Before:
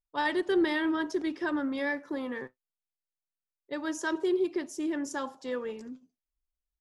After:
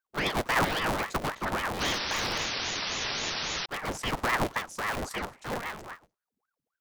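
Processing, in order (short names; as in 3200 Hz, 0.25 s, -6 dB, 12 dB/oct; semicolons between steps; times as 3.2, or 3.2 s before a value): cycle switcher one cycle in 3, inverted; painted sound noise, 1.8–3.66, 230–5600 Hz -32 dBFS; ring modulator with a swept carrier 850 Hz, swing 85%, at 3.7 Hz; gain +2.5 dB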